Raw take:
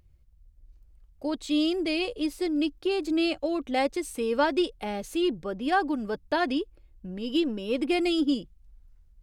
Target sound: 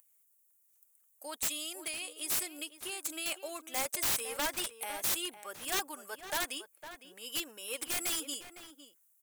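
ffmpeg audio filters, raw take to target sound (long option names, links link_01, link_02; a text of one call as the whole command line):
ffmpeg -i in.wav -filter_complex "[0:a]highpass=1000,asettb=1/sr,asplit=3[link_01][link_02][link_03];[link_01]atrim=end=1.334[link_04];[link_02]atrim=start=1.33:end=3.26,asetpts=PTS-STARTPTS,afade=type=in:duration=0.004:curve=qsin,afade=type=out:start_time=1.926:duration=0.004:curve=qsin,acompressor=threshold=-35dB:ratio=6[link_05];[link_03]atrim=start=3.256[link_06];[link_04][link_05]acrossfade=duration=0.004:curve1=hsin:curve2=qsin[link_07];[link_07][link_06]acrossfade=duration=0.004:curve1=qsin:curve2=hsin,aexciter=amount=13.8:drive=4.3:freq=6900,aeval=exprs='(mod(13.3*val(0)+1,2)-1)/13.3':channel_layout=same,asplit=2[link_08][link_09];[link_09]adelay=507.3,volume=-11dB,highshelf=frequency=4000:gain=-11.4[link_10];[link_08][link_10]amix=inputs=2:normalize=0,volume=-2.5dB" out.wav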